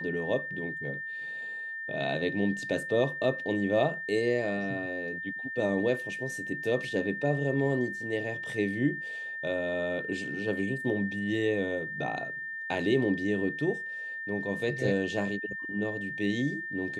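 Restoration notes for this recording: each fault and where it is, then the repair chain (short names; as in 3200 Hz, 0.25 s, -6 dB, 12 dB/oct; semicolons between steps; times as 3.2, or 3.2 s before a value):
tone 1800 Hz -35 dBFS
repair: notch 1800 Hz, Q 30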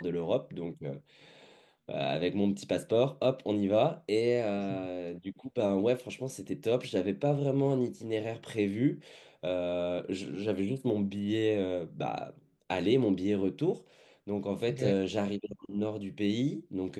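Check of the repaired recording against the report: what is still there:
none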